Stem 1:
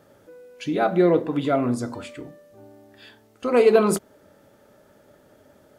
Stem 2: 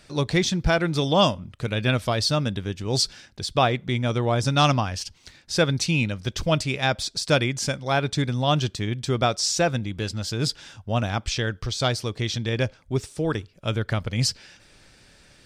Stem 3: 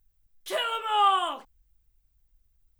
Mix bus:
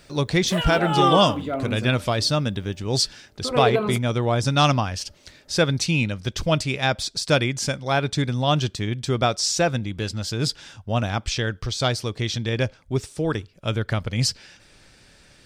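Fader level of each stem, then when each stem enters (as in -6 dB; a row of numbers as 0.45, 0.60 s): -6.0, +1.0, +1.0 dB; 0.00, 0.00, 0.00 s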